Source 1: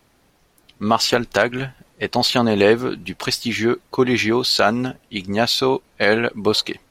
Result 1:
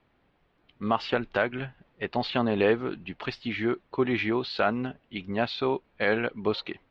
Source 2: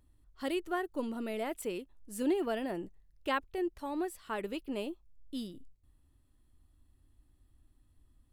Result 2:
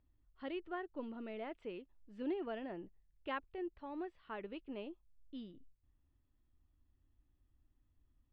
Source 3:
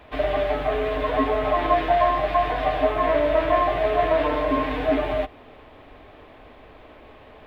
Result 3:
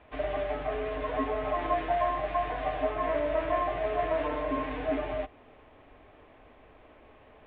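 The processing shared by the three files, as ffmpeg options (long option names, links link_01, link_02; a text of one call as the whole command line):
ffmpeg -i in.wav -af "lowpass=frequency=3300:width=0.5412,lowpass=frequency=3300:width=1.3066,volume=-8.5dB" out.wav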